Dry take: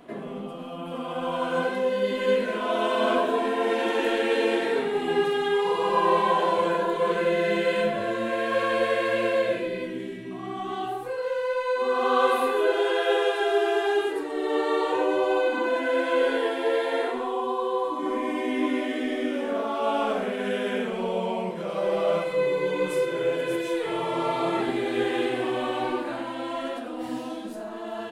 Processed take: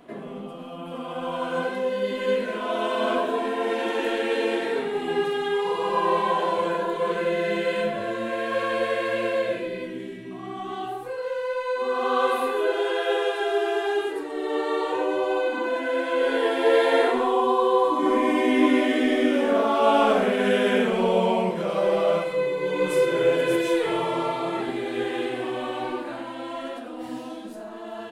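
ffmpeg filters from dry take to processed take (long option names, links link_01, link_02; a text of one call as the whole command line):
ffmpeg -i in.wav -af "volume=13.5dB,afade=type=in:start_time=16.18:duration=0.65:silence=0.421697,afade=type=out:start_time=21.27:duration=1.29:silence=0.375837,afade=type=in:start_time=22.56:duration=0.52:silence=0.446684,afade=type=out:start_time=23.74:duration=0.67:silence=0.446684" out.wav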